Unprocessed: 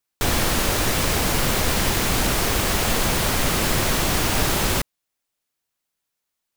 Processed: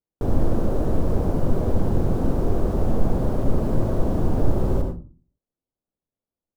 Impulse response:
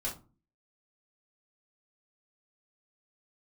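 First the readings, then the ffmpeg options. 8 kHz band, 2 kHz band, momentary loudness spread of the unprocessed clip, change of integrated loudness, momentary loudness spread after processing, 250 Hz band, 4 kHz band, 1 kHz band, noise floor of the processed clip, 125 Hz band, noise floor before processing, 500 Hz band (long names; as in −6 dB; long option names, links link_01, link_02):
below −25 dB, −22.0 dB, 1 LU, −4.0 dB, 2 LU, +2.0 dB, −28.0 dB, −9.0 dB, below −85 dBFS, +2.5 dB, −81 dBFS, 0.0 dB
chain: -filter_complex "[0:a]firequalizer=gain_entry='entry(440,0);entry(880,-10);entry(2100,-29)':delay=0.05:min_phase=1,asplit=2[link_01][link_02];[1:a]atrim=start_sample=2205,adelay=71[link_03];[link_02][link_03]afir=irnorm=-1:irlink=0,volume=-7dB[link_04];[link_01][link_04]amix=inputs=2:normalize=0"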